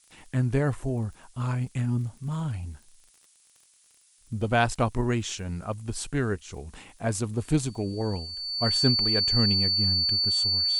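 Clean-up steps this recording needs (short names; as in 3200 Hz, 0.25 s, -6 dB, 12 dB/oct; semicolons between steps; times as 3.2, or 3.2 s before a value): de-click; notch 4500 Hz, Q 30; noise print and reduce 12 dB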